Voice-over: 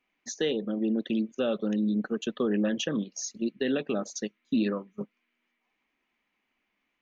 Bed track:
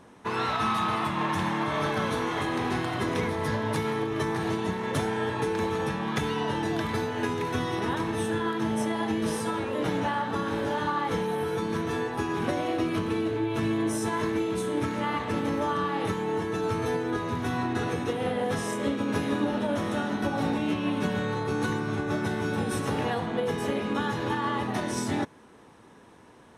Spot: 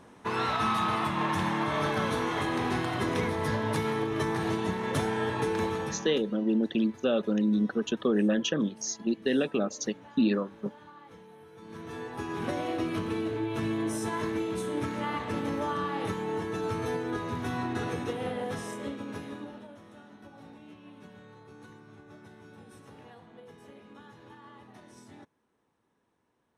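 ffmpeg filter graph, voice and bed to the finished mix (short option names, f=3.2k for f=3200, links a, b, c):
-filter_complex "[0:a]adelay=5650,volume=1.5dB[a];[1:a]volume=18.5dB,afade=t=out:st=5.62:d=0.61:silence=0.0794328,afade=t=in:st=11.55:d=1.01:silence=0.105925,afade=t=out:st=17.99:d=1.77:silence=0.112202[b];[a][b]amix=inputs=2:normalize=0"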